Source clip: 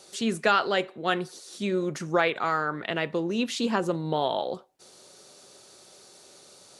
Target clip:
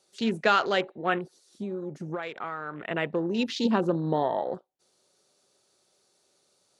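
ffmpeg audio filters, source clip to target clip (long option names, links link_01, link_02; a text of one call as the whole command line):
ffmpeg -i in.wav -filter_complex "[0:a]afwtdn=0.0141,asettb=1/sr,asplit=3[link_01][link_02][link_03];[link_01]atrim=end=1.184[link_04];[link_02]atrim=start=1.18:end=2.91,asetpts=PTS-STARTPTS,afade=type=in:duration=0.004:curve=qsin,afade=type=out:start_time=1.726:duration=0.004:curve=qsin,acompressor=threshold=-31dB:ratio=6[link_05];[link_03]atrim=start=2.906[link_06];[link_04][link_05]acrossfade=duration=0.004:curve1=hsin:curve2=qsin[link_07];[link_07][link_06]acrossfade=duration=0.004:curve1=qsin:curve2=hsin,asettb=1/sr,asplit=3[link_08][link_09][link_10];[link_08]atrim=end=3.654[link_11];[link_09]atrim=start=3.65:end=4.23,asetpts=PTS-STARTPTS,afade=type=in:duration=0.004:curve=qsin,afade=type=out:start_time=0.576:duration=0.004:curve=qsin,equalizer=frequency=250:width_type=o:width=1:gain=5,equalizer=frequency=2000:width_type=o:width=1:gain=-6,equalizer=frequency=4000:width_type=o:width=1:gain=9[link_12];[link_10]atrim=start=4.226[link_13];[link_11][link_12]acrossfade=duration=0.004:curve1=hsin:curve2=qsin[link_14];[link_14][link_13]acrossfade=duration=0.004:curve1=qsin:curve2=hsin" out.wav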